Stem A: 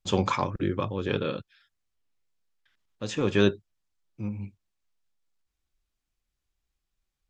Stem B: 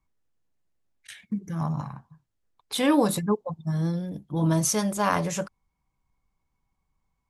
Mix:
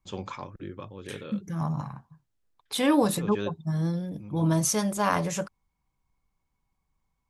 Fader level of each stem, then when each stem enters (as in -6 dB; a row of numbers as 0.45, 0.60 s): -11.5, -1.0 dB; 0.00, 0.00 s